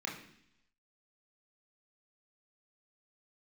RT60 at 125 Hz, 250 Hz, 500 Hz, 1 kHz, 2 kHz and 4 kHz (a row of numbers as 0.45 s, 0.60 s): 0.90 s, 0.85 s, 0.70 s, 0.70 s, 0.85 s, 0.95 s